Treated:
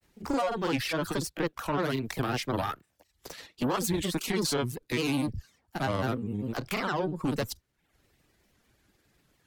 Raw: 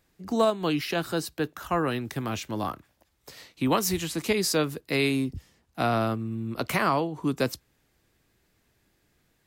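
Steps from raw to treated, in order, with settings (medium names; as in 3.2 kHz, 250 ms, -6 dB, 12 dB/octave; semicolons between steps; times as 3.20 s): peak limiter -20 dBFS, peak gain reduction 7.5 dB; valve stage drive 29 dB, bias 0.6; reverb removal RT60 0.57 s; granulator, spray 30 ms, pitch spread up and down by 3 st; trim +7 dB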